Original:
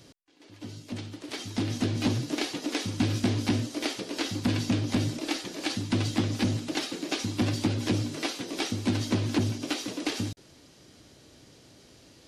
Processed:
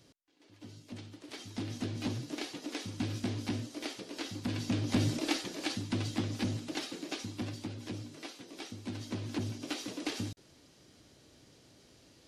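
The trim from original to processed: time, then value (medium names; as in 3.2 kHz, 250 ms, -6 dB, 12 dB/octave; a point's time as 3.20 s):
4.49 s -9 dB
5.15 s 0 dB
5.95 s -7 dB
6.99 s -7 dB
7.66 s -14 dB
8.83 s -14 dB
9.84 s -6 dB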